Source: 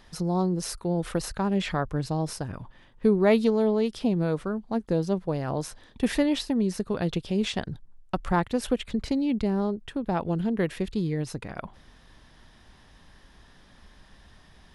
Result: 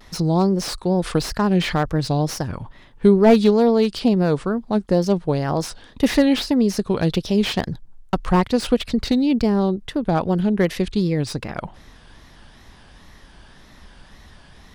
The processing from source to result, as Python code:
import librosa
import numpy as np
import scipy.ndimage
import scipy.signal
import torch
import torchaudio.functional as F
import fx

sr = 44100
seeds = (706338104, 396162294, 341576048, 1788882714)

y = fx.dynamic_eq(x, sr, hz=4800.0, q=1.8, threshold_db=-54.0, ratio=4.0, max_db=7)
y = fx.wow_flutter(y, sr, seeds[0], rate_hz=2.1, depth_cents=140.0)
y = fx.slew_limit(y, sr, full_power_hz=100.0)
y = F.gain(torch.from_numpy(y), 7.5).numpy()